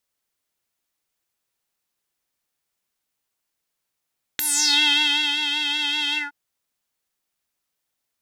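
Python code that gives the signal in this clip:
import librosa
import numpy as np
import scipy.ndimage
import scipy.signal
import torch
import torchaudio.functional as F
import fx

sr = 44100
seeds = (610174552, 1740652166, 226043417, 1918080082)

y = fx.sub_patch_vibrato(sr, seeds[0], note=62, wave='square', wave2='saw', interval_st=19, detune_cents=16, level2_db=-9.0, sub_db=-25.5, noise_db=-22, kind='bandpass', cutoff_hz=1200.0, q=5.8, env_oct=3.5, env_decay_s=0.39, env_sustain_pct=40, attack_ms=1.7, decay_s=0.98, sustain_db=-9, release_s=0.16, note_s=1.76, lfo_hz=5.2, vibrato_cents=41)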